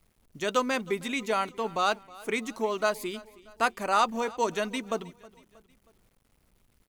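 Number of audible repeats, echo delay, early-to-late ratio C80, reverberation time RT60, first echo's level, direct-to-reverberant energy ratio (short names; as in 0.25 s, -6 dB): 3, 0.317 s, none, none, -21.5 dB, none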